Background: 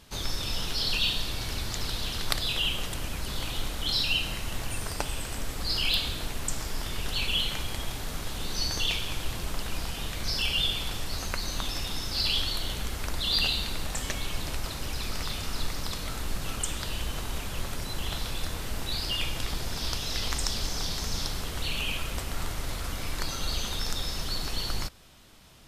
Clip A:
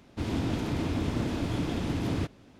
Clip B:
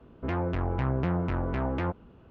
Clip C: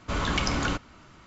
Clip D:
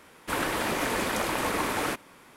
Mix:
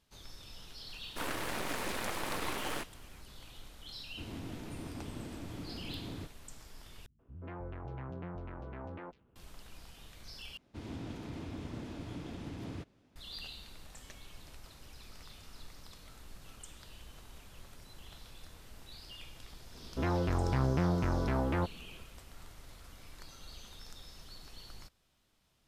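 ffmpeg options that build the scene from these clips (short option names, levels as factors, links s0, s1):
-filter_complex "[1:a]asplit=2[s0][s1];[2:a]asplit=2[s2][s3];[0:a]volume=0.106[s4];[4:a]aeval=exprs='max(val(0),0)':c=same[s5];[s2]acrossover=split=190|3600[s6][s7][s8];[s7]adelay=130[s9];[s8]adelay=530[s10];[s6][s9][s10]amix=inputs=3:normalize=0[s11];[s4]asplit=3[s12][s13][s14];[s12]atrim=end=7.064[s15];[s11]atrim=end=2.3,asetpts=PTS-STARTPTS,volume=0.2[s16];[s13]atrim=start=9.356:end=10.574[s17];[s1]atrim=end=2.59,asetpts=PTS-STARTPTS,volume=0.224[s18];[s14]atrim=start=13.156[s19];[s5]atrim=end=2.36,asetpts=PTS-STARTPTS,volume=0.562,afade=t=in:d=0.004:c=hsin,afade=t=out:st=2.356:d=0.004:c=hsin,adelay=880[s20];[s0]atrim=end=2.59,asetpts=PTS-STARTPTS,volume=0.2,afade=t=in:d=0.004:c=hsin,afade=t=out:st=2.586:d=0.004:c=hsin,adelay=4000[s21];[s3]atrim=end=2.3,asetpts=PTS-STARTPTS,volume=0.794,afade=t=in:d=0.004:c=hsin,afade=t=out:st=2.296:d=0.004:c=hsin,adelay=19740[s22];[s15][s16]acrossfade=d=0.004:c1=hsin:c2=hsin[s23];[s23][s17]acrossfade=d=0.004:c1=hsin:c2=hsin[s24];[s24][s18]acrossfade=d=0.004:c1=hsin:c2=hsin[s25];[s25][s19]acrossfade=d=0.004:c1=hsin:c2=hsin[s26];[s26][s20][s21][s22]amix=inputs=4:normalize=0"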